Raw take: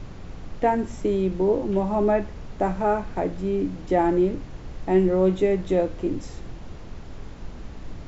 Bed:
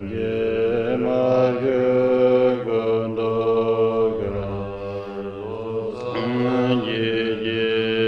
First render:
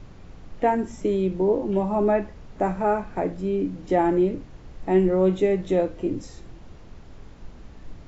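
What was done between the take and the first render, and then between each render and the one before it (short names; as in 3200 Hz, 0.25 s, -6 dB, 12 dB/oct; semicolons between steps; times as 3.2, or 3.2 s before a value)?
noise print and reduce 6 dB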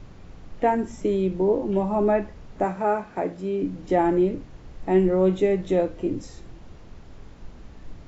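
2.64–3.63 HPF 220 Hz 6 dB/oct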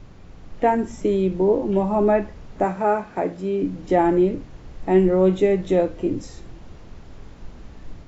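AGC gain up to 3 dB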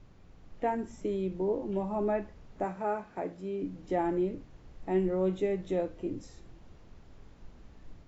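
gain -12 dB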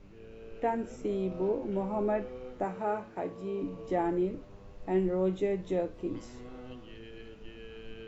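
add bed -27 dB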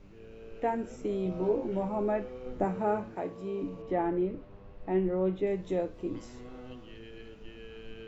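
1.24–1.89 doubler 17 ms -4 dB; 2.46–3.16 low shelf 390 Hz +9 dB; 3.82–5.47 LPF 3100 Hz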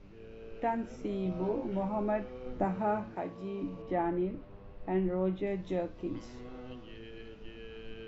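LPF 6100 Hz 24 dB/oct; dynamic EQ 440 Hz, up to -7 dB, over -45 dBFS, Q 2.8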